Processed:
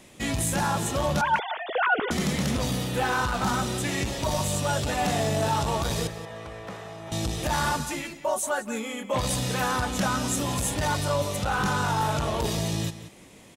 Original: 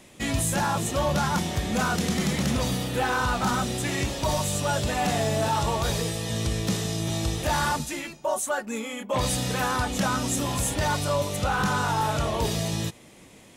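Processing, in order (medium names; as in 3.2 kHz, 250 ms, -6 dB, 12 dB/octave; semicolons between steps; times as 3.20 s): 1.21–2.11 s: formants replaced by sine waves; 6.07–7.12 s: three-band isolator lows -17 dB, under 530 Hz, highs -22 dB, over 2 kHz; echo from a far wall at 31 m, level -13 dB; transformer saturation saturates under 300 Hz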